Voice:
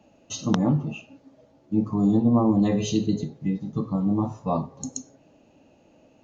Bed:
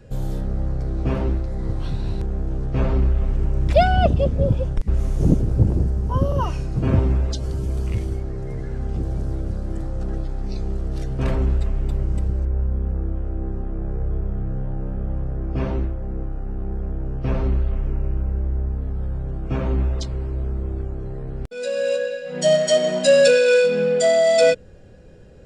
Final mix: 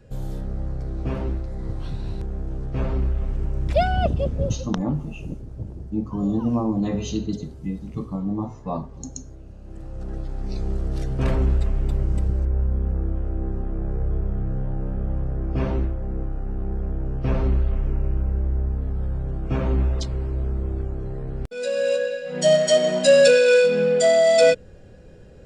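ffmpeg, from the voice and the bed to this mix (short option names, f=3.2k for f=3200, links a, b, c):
-filter_complex "[0:a]adelay=4200,volume=-3dB[a];[1:a]volume=12dB,afade=t=out:st=4.44:d=0.31:silence=0.251189,afade=t=in:st=9.58:d=1.14:silence=0.149624[b];[a][b]amix=inputs=2:normalize=0"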